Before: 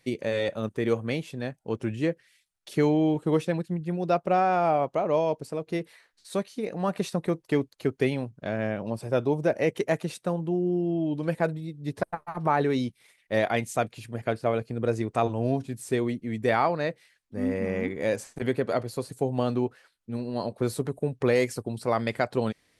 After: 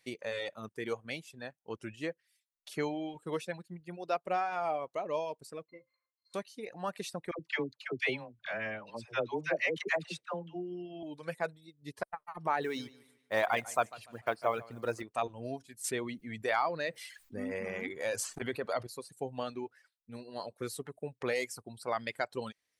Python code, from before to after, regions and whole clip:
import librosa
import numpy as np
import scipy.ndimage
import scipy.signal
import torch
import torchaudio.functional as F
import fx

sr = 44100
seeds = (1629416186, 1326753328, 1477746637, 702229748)

y = fx.chain(x, sr, fx.peak_eq(hz=1100.0, db=11.5, octaves=1.5),
    fx.octave_resonator(note='C', decay_s=0.13), at=(5.66, 6.34))
y = fx.chain(y, sr, fx.lowpass(hz=6300.0, slope=12),
    fx.peak_eq(hz=2200.0, db=8.0, octaves=1.8),
    fx.dispersion(late='lows', ms=82.0, hz=660.0), at=(7.31, 11.03))
y = fx.chain(y, sr, fx.block_float(bits=7),
    fx.peak_eq(hz=1000.0, db=9.0, octaves=1.2),
    fx.echo_feedback(ms=147, feedback_pct=36, wet_db=-10.0), at=(12.62, 15.03))
y = fx.chain(y, sr, fx.clip_hard(threshold_db=-11.5),
    fx.env_flatten(amount_pct=50), at=(15.84, 18.87))
y = fx.dereverb_blind(y, sr, rt60_s=1.5)
y = fx.low_shelf(y, sr, hz=500.0, db=-12.0)
y = y * 10.0 ** (-3.5 / 20.0)